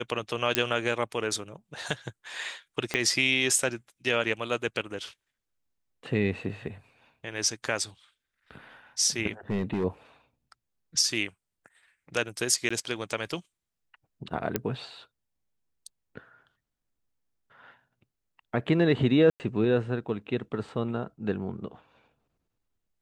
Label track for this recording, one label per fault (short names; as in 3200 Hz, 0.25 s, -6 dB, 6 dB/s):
0.550000	0.550000	pop -5 dBFS
2.940000	2.940000	pop -12 dBFS
9.500000	9.850000	clipped -24 dBFS
12.690000	12.710000	gap 15 ms
14.560000	14.560000	pop -11 dBFS
19.300000	19.400000	gap 99 ms